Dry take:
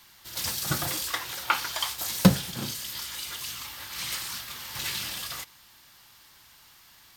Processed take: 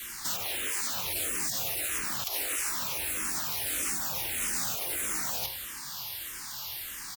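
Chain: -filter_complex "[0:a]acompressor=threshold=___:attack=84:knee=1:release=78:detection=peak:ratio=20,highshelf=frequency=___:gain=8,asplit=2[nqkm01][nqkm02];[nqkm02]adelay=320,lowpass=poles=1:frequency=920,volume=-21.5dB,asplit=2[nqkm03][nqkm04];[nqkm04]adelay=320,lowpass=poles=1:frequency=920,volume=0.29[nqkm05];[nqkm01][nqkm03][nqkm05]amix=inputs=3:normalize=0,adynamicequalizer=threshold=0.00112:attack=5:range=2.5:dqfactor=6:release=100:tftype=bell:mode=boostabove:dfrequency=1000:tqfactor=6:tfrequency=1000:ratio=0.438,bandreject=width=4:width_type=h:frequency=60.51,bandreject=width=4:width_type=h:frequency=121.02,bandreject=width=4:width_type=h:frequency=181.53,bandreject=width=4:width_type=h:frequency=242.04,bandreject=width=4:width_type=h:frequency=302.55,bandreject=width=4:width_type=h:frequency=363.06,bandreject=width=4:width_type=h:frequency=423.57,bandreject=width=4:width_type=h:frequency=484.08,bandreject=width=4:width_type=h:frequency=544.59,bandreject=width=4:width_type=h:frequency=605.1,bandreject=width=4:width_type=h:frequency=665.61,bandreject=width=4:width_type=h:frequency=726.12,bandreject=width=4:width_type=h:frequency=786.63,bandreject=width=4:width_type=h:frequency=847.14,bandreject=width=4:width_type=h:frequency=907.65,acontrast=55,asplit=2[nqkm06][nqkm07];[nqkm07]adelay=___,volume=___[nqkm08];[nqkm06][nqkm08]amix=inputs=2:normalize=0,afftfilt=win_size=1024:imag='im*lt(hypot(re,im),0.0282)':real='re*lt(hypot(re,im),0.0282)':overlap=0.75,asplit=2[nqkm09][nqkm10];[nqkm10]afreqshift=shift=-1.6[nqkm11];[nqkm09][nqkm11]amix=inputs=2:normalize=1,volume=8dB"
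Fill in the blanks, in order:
-40dB, 6000, 22, -8.5dB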